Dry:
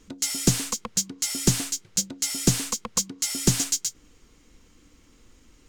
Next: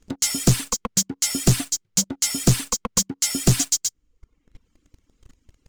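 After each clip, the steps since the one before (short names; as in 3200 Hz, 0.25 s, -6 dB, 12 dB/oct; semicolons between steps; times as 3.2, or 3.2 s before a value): reverb removal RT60 1.1 s; low shelf 190 Hz +9.5 dB; sample leveller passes 3; gain -5.5 dB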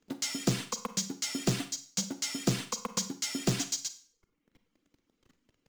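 three-band isolator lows -19 dB, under 150 Hz, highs -15 dB, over 6100 Hz; short-mantissa float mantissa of 2-bit; Schroeder reverb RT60 0.45 s, combs from 32 ms, DRR 10.5 dB; gain -7 dB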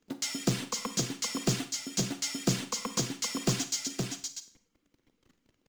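echo 0.518 s -5 dB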